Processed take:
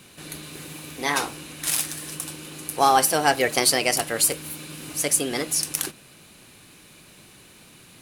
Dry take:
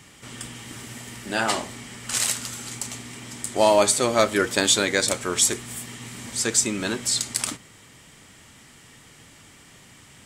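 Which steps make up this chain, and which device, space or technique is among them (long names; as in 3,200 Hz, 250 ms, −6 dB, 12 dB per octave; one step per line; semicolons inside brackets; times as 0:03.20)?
nightcore (speed change +28%)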